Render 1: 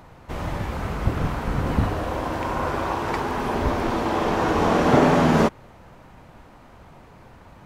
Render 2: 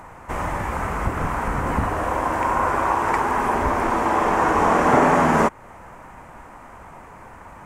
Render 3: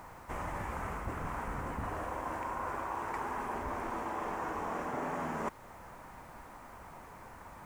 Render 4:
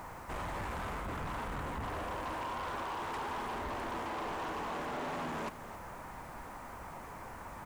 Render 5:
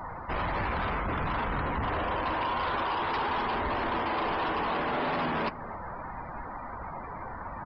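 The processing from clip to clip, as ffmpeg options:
ffmpeg -i in.wav -filter_complex "[0:a]asplit=2[link_01][link_02];[link_02]acompressor=threshold=-28dB:ratio=6,volume=0.5dB[link_03];[link_01][link_03]amix=inputs=2:normalize=0,equalizer=frequency=125:width_type=o:width=1:gain=-4,equalizer=frequency=1000:width_type=o:width=1:gain=7,equalizer=frequency=2000:width_type=o:width=1:gain=6,equalizer=frequency=4000:width_type=o:width=1:gain=-11,equalizer=frequency=8000:width_type=o:width=1:gain=9,volume=-3.5dB" out.wav
ffmpeg -i in.wav -af "areverse,acompressor=threshold=-26dB:ratio=6,areverse,acrusher=bits=8:mix=0:aa=0.000001,volume=-8.5dB" out.wav
ffmpeg -i in.wav -af "asoftclip=type=tanh:threshold=-40dB,aecho=1:1:269:0.2,volume=4.5dB" out.wav
ffmpeg -i in.wav -af "aemphasis=mode=production:type=75kf,afftdn=noise_reduction=28:noise_floor=-47,aresample=11025,aresample=44100,volume=8dB" out.wav

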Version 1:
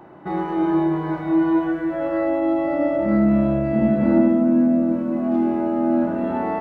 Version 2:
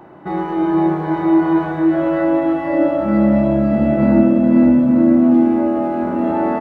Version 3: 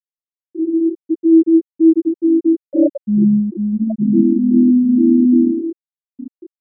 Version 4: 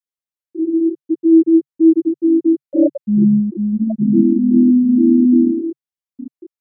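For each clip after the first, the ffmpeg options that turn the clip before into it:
ffmpeg -i in.wav -af "aecho=1:1:510|867|1117|1292|1414:0.631|0.398|0.251|0.158|0.1,volume=3dB" out.wav
ffmpeg -i in.wav -af "afftfilt=real='re*gte(hypot(re,im),1.41)':imag='im*gte(hypot(re,im),1.41)':win_size=1024:overlap=0.75,dynaudnorm=framelen=240:gausssize=9:maxgain=11.5dB,volume=-1dB" out.wav
ffmpeg -i in.wav -af "adynamicequalizer=threshold=0.0126:dfrequency=140:dqfactor=3.9:tfrequency=140:tqfactor=3.9:attack=5:release=100:ratio=0.375:range=2:mode=boostabove:tftype=bell" out.wav

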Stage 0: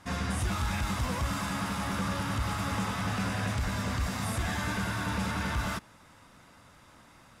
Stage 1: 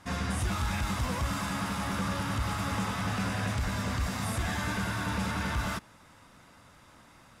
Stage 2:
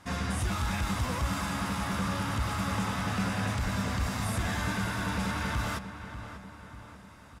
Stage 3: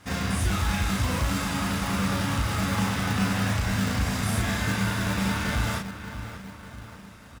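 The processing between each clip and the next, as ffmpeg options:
ffmpeg -i in.wav -af anull out.wav
ffmpeg -i in.wav -filter_complex "[0:a]asplit=2[link_01][link_02];[link_02]adelay=591,lowpass=frequency=2700:poles=1,volume=-10.5dB,asplit=2[link_03][link_04];[link_04]adelay=591,lowpass=frequency=2700:poles=1,volume=0.54,asplit=2[link_05][link_06];[link_06]adelay=591,lowpass=frequency=2700:poles=1,volume=0.54,asplit=2[link_07][link_08];[link_08]adelay=591,lowpass=frequency=2700:poles=1,volume=0.54,asplit=2[link_09][link_10];[link_10]adelay=591,lowpass=frequency=2700:poles=1,volume=0.54,asplit=2[link_11][link_12];[link_12]adelay=591,lowpass=frequency=2700:poles=1,volume=0.54[link_13];[link_01][link_03][link_05][link_07][link_09][link_11][link_13]amix=inputs=7:normalize=0" out.wav
ffmpeg -i in.wav -filter_complex "[0:a]asplit=2[link_01][link_02];[link_02]adelay=36,volume=-2.5dB[link_03];[link_01][link_03]amix=inputs=2:normalize=0,acrossover=split=960[link_04][link_05];[link_04]acrusher=samples=23:mix=1:aa=0.000001:lfo=1:lforange=13.8:lforate=2.4[link_06];[link_06][link_05]amix=inputs=2:normalize=0,volume=3dB" out.wav

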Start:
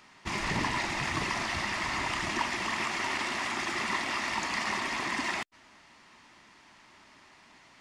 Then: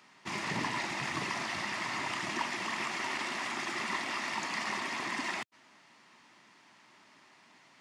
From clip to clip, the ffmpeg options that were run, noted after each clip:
ffmpeg -i in.wav -af "highpass=frequency=120:width=0.5412,highpass=frequency=120:width=1.3066,volume=-3.5dB" out.wav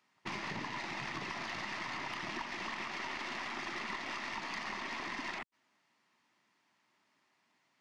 ffmpeg -i in.wav -af "afwtdn=0.00447,acompressor=threshold=-39dB:ratio=6,aeval=exprs='0.0355*(cos(1*acos(clip(val(0)/0.0355,-1,1)))-cos(1*PI/2))+0.00316*(cos(4*acos(clip(val(0)/0.0355,-1,1)))-cos(4*PI/2))':channel_layout=same,volume=1.5dB" out.wav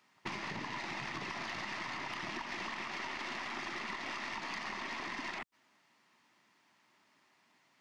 ffmpeg -i in.wav -af "acompressor=threshold=-42dB:ratio=6,volume=5dB" out.wav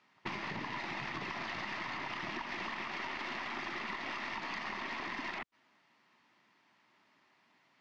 ffmpeg -i in.wav -af "lowpass=4500,volume=1dB" out.wav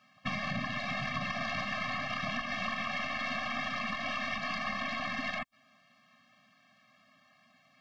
ffmpeg -i in.wav -af "afftfilt=real='re*eq(mod(floor(b*sr/1024/260),2),0)':imag='im*eq(mod(floor(b*sr/1024/260),2),0)':win_size=1024:overlap=0.75,volume=8.5dB" out.wav

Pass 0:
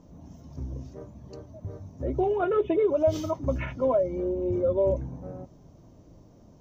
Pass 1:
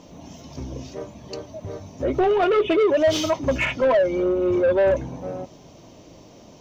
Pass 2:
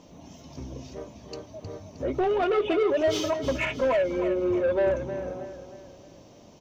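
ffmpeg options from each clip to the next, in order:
ffmpeg -i in.wav -filter_complex "[0:a]highshelf=frequency=2000:width_type=q:width=1.5:gain=8,asplit=2[link_01][link_02];[link_02]highpass=frequency=720:poles=1,volume=18dB,asoftclip=type=tanh:threshold=-14dB[link_03];[link_01][link_03]amix=inputs=2:normalize=0,lowpass=frequency=2500:poles=1,volume=-6dB,volume=3dB" out.wav
ffmpeg -i in.wav -af "aecho=1:1:312|624|936|1248|1560:0.299|0.128|0.0552|0.0237|0.0102,volume=-5.5dB" out.wav

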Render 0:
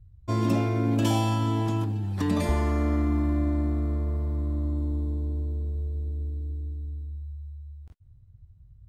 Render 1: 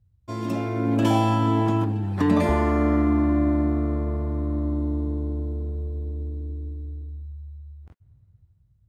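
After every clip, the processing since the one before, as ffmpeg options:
ffmpeg -i in.wav -filter_complex "[0:a]highpass=frequency=160:poles=1,acrossover=split=2500[link_01][link_02];[link_01]dynaudnorm=framelen=190:gausssize=9:maxgain=11.5dB[link_03];[link_03][link_02]amix=inputs=2:normalize=0,volume=-3.5dB" out.wav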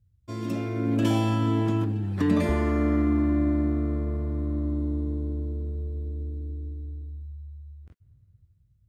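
ffmpeg -i in.wav -af "equalizer=frequency=850:width_type=o:width=0.81:gain=-9,volume=-2dB" out.wav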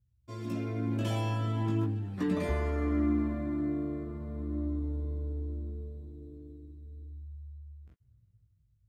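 ffmpeg -i in.wav -af "flanger=delay=15.5:depth=4.5:speed=0.39,volume=-3.5dB" out.wav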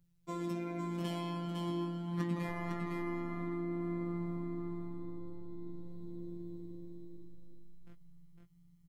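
ffmpeg -i in.wav -af "acompressor=threshold=-41dB:ratio=4,afftfilt=real='hypot(re,im)*cos(PI*b)':imag='0':win_size=1024:overlap=0.75,aecho=1:1:506:0.596,volume=9.5dB" out.wav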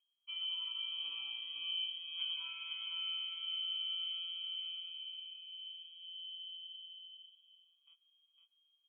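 ffmpeg -i in.wav -filter_complex "[0:a]asplit=3[link_01][link_02][link_03];[link_01]bandpass=frequency=300:width_type=q:width=8,volume=0dB[link_04];[link_02]bandpass=frequency=870:width_type=q:width=8,volume=-6dB[link_05];[link_03]bandpass=frequency=2240:width_type=q:width=8,volume=-9dB[link_06];[link_04][link_05][link_06]amix=inputs=3:normalize=0,highshelf=frequency=2200:gain=-9,lowpass=frequency=2900:width_type=q:width=0.5098,lowpass=frequency=2900:width_type=q:width=0.6013,lowpass=frequency=2900:width_type=q:width=0.9,lowpass=frequency=2900:width_type=q:width=2.563,afreqshift=-3400,volume=8dB" out.wav

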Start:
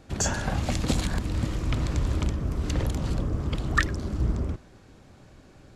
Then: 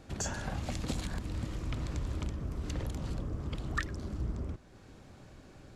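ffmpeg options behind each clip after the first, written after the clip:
ffmpeg -i in.wav -af "acompressor=threshold=-45dB:ratio=1.5,volume=-1.5dB" out.wav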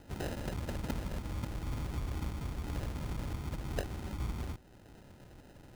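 ffmpeg -i in.wav -af "acrusher=samples=39:mix=1:aa=0.000001,volume=-1.5dB" out.wav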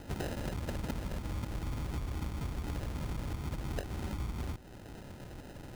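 ffmpeg -i in.wav -af "acompressor=threshold=-41dB:ratio=6,volume=7.5dB" out.wav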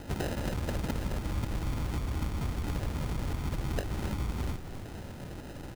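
ffmpeg -i in.wav -filter_complex "[0:a]asplit=8[link_01][link_02][link_03][link_04][link_05][link_06][link_07][link_08];[link_02]adelay=267,afreqshift=-79,volume=-10.5dB[link_09];[link_03]adelay=534,afreqshift=-158,volume=-15.4dB[link_10];[link_04]adelay=801,afreqshift=-237,volume=-20.3dB[link_11];[link_05]adelay=1068,afreqshift=-316,volume=-25.1dB[link_12];[link_06]adelay=1335,afreqshift=-395,volume=-30dB[link_13];[link_07]adelay=1602,afreqshift=-474,volume=-34.9dB[link_14];[link_08]adelay=1869,afreqshift=-553,volume=-39.8dB[link_15];[link_01][link_09][link_10][link_11][link_12][link_13][link_14][link_15]amix=inputs=8:normalize=0,volume=4dB" out.wav

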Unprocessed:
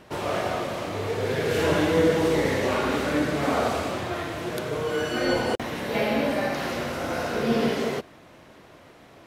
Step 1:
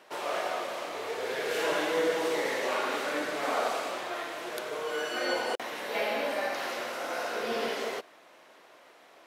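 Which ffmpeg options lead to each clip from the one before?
ffmpeg -i in.wav -af "highpass=510,volume=-3dB" out.wav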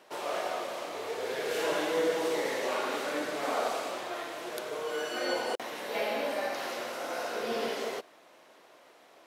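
ffmpeg -i in.wav -af "equalizer=frequency=1800:width_type=o:width=1.9:gain=-3.5" out.wav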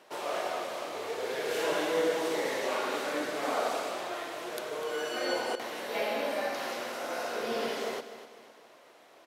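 ffmpeg -i in.wav -af "aecho=1:1:250|500|750|1000:0.224|0.094|0.0395|0.0166" out.wav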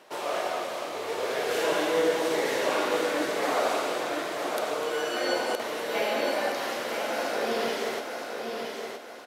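ffmpeg -i in.wav -af "aecho=1:1:968|1936|2904|3872:0.531|0.181|0.0614|0.0209,volume=3.5dB" out.wav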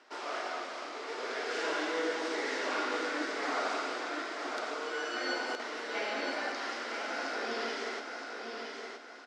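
ffmpeg -i in.wav -af "highpass=frequency=250:width=0.5412,highpass=frequency=250:width=1.3066,equalizer=frequency=260:width_type=q:width=4:gain=6,equalizer=frequency=550:width_type=q:width=4:gain=-6,equalizer=frequency=1400:width_type=q:width=4:gain=7,equalizer=frequency=2000:width_type=q:width=4:gain=4,equalizer=frequency=5000:width_type=q:width=4:gain=6,lowpass=frequency=7300:width=0.5412,lowpass=frequency=7300:width=1.3066,volume=-7.5dB" out.wav

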